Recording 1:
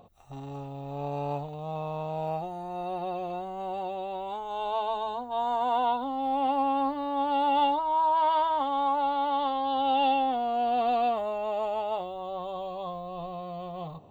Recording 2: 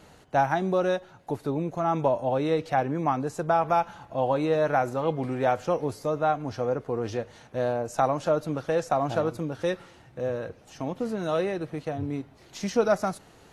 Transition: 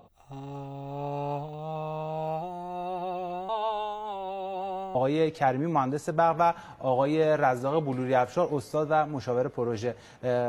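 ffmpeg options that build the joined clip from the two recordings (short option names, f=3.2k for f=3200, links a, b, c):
-filter_complex "[0:a]apad=whole_dur=10.48,atrim=end=10.48,asplit=2[a][b];[a]atrim=end=3.492[c];[b]atrim=start=3.488:end=4.952,asetpts=PTS-STARTPTS,areverse[d];[1:a]atrim=start=2.258:end=7.79[e];[c][d]acrossfade=d=0.004:c1=hsin:c2=hsin[f];[f][e]acrossfade=d=0.004:c1=hsin:c2=hsin"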